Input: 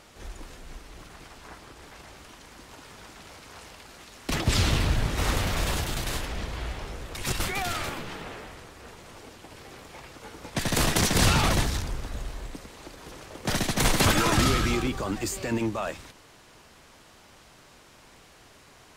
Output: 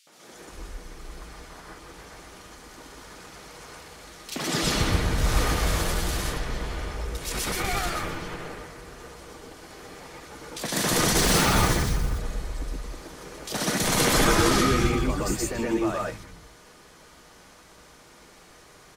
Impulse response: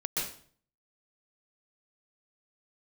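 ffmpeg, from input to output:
-filter_complex "[0:a]asettb=1/sr,asplit=3[link_01][link_02][link_03];[link_01]atrim=end=11.174[link_04];[link_02]atrim=start=11.17:end=12.06,asetpts=PTS-STARTPTS,afade=type=in:duration=0.004:curve=qsin,afade=type=out:start_time=0.886:duration=0.004:curve=qsin,acrusher=bits=3:mode=log:mix=0:aa=0.000001[link_05];[link_03]atrim=start=12.056[link_06];[link_04][link_05]acrossfade=duration=0.004:curve1=hsin:curve2=qsin[link_07];[link_07][link_06]acrossfade=duration=0.004:curve1=qsin:curve2=hsin,acrossover=split=150|2700[link_08][link_09][link_10];[link_09]adelay=70[link_11];[link_08]adelay=330[link_12];[link_12][link_11][link_10]amix=inputs=3:normalize=0[link_13];[1:a]atrim=start_sample=2205,afade=type=out:start_time=0.18:duration=0.01,atrim=end_sample=8379[link_14];[link_13][link_14]afir=irnorm=-1:irlink=0"

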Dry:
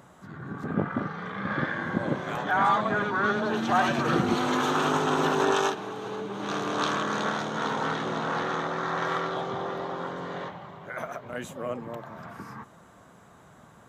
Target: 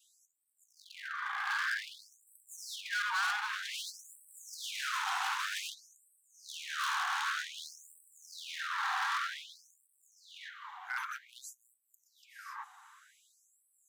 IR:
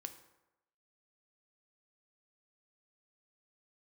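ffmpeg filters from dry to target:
-af "adynamicequalizer=threshold=0.00708:dfrequency=1600:dqfactor=3.3:tfrequency=1600:tqfactor=3.3:attack=5:release=100:ratio=0.375:range=2:mode=boostabove:tftype=bell,volume=29.5dB,asoftclip=hard,volume=-29.5dB,afftfilt=real='re*gte(b*sr/1024,710*pow(7800/710,0.5+0.5*sin(2*PI*0.53*pts/sr)))':imag='im*gte(b*sr/1024,710*pow(7800/710,0.5+0.5*sin(2*PI*0.53*pts/sr)))':win_size=1024:overlap=0.75"

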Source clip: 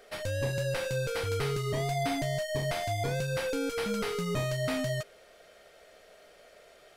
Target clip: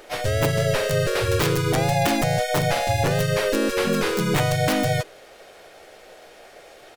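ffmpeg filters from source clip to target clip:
ffmpeg -i in.wav -filter_complex "[0:a]aeval=exprs='(mod(13.3*val(0)+1,2)-1)/13.3':channel_layout=same,asplit=3[link_01][link_02][link_03];[link_02]asetrate=35002,aresample=44100,atempo=1.25992,volume=-3dB[link_04];[link_03]asetrate=52444,aresample=44100,atempo=0.840896,volume=-2dB[link_05];[link_01][link_04][link_05]amix=inputs=3:normalize=0,volume=6.5dB" out.wav

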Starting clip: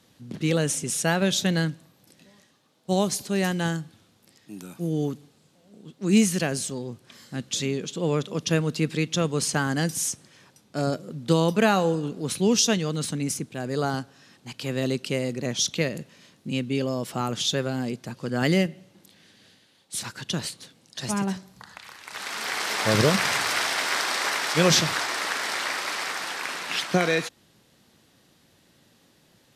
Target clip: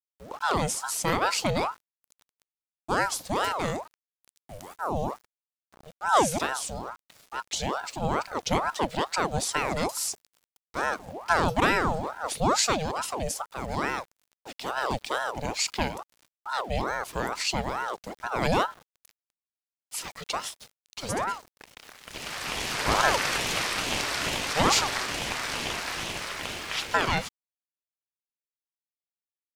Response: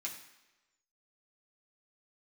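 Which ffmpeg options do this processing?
-af "aeval=exprs='val(0)*gte(abs(val(0)),0.00596)':channel_layout=same,aeval=exprs='val(0)*sin(2*PI*750*n/s+750*0.6/2.3*sin(2*PI*2.3*n/s))':channel_layout=same"

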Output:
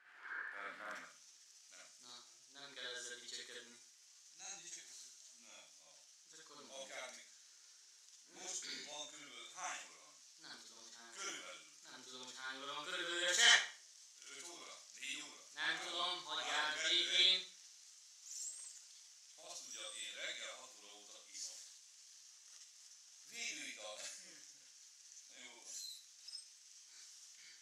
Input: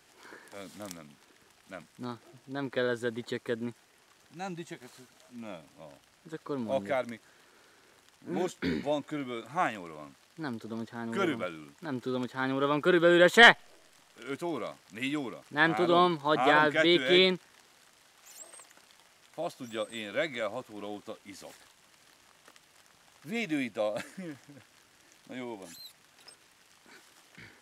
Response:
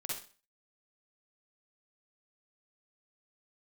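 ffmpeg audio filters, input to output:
-filter_complex "[0:a]asetnsamples=nb_out_samples=441:pad=0,asendcmd='0.99 bandpass f 6100',bandpass=frequency=1600:width_type=q:width=3.7:csg=0[link_01];[1:a]atrim=start_sample=2205[link_02];[link_01][link_02]afir=irnorm=-1:irlink=0,volume=8.5dB"

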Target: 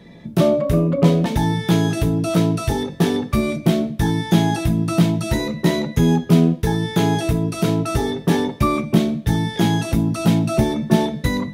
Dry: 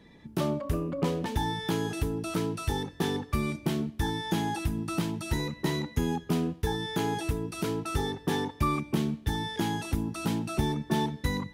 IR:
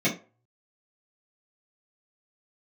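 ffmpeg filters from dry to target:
-filter_complex "[0:a]asplit=2[link_01][link_02];[link_02]equalizer=frequency=100:width_type=o:width=0.67:gain=10,equalizer=frequency=630:width_type=o:width=0.67:gain=12,equalizer=frequency=4000:width_type=o:width=0.67:gain=10[link_03];[1:a]atrim=start_sample=2205,atrim=end_sample=3087[link_04];[link_03][link_04]afir=irnorm=-1:irlink=0,volume=-19.5dB[link_05];[link_01][link_05]amix=inputs=2:normalize=0,volume=7.5dB"

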